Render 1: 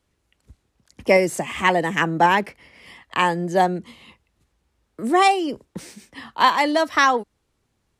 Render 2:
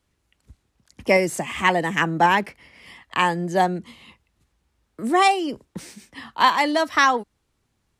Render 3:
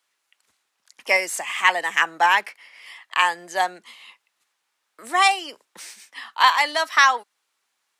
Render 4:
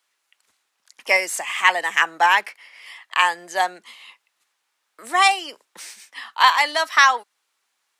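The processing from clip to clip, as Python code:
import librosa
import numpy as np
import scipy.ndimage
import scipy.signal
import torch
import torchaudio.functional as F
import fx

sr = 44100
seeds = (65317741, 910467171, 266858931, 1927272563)

y1 = fx.peak_eq(x, sr, hz=480.0, db=-3.0, octaves=1.1)
y2 = scipy.signal.sosfilt(scipy.signal.butter(2, 990.0, 'highpass', fs=sr, output='sos'), y1)
y2 = y2 * 10.0 ** (3.5 / 20.0)
y3 = fx.low_shelf(y2, sr, hz=210.0, db=-6.0)
y3 = y3 * 10.0 ** (1.5 / 20.0)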